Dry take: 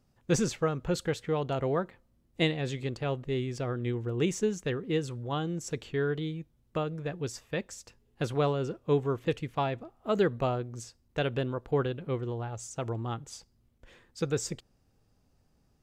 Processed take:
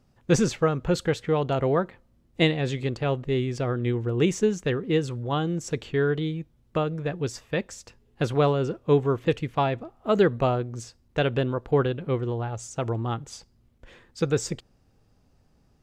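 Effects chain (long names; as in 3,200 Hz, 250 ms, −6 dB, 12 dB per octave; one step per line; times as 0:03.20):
high-shelf EQ 7,100 Hz −7 dB
level +6 dB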